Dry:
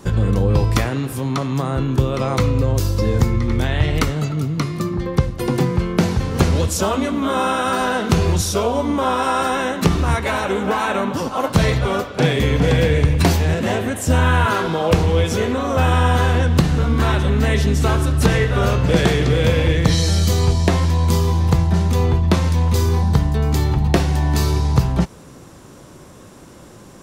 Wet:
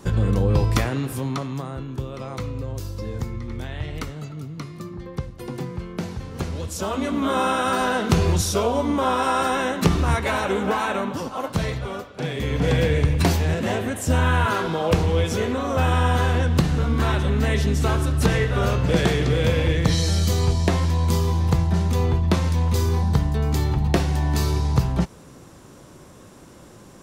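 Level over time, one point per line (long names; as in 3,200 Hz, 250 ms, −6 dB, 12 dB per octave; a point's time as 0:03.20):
0:01.18 −3 dB
0:01.84 −12.5 dB
0:06.57 −12.5 dB
0:07.16 −2.5 dB
0:10.64 −2.5 dB
0:12.18 −12.5 dB
0:12.70 −4 dB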